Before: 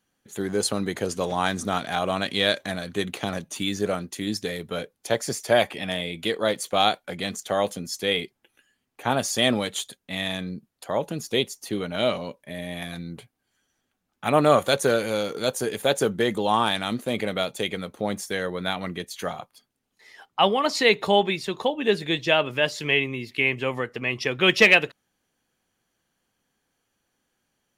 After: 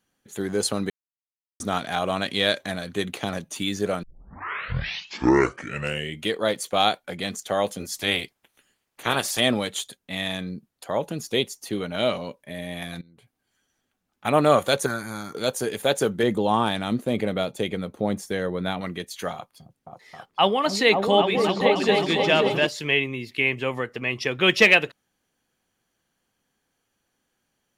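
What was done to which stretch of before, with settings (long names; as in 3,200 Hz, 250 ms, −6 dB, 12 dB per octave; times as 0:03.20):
0:00.90–0:01.60: silence
0:04.03: tape start 2.31 s
0:07.79–0:09.39: ceiling on every frequency bin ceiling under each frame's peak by 16 dB
0:13.01–0:14.25: downward compressor 16 to 1, threshold −50 dBFS
0:14.86–0:15.35: phaser with its sweep stopped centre 1,200 Hz, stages 4
0:16.23–0:18.81: tilt shelving filter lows +4.5 dB, about 760 Hz
0:19.33–0:22.67: echo whose low-pass opens from repeat to repeat 267 ms, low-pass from 200 Hz, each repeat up 2 octaves, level 0 dB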